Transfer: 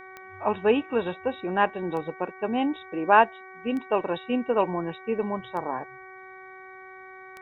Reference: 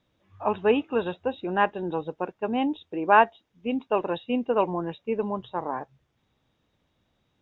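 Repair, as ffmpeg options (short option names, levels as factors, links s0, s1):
-af "adeclick=t=4,bandreject=f=377.1:t=h:w=4,bandreject=f=754.2:t=h:w=4,bandreject=f=1131.3:t=h:w=4,bandreject=f=1508.4:t=h:w=4,bandreject=f=1885.5:t=h:w=4,bandreject=f=2262.6:t=h:w=4"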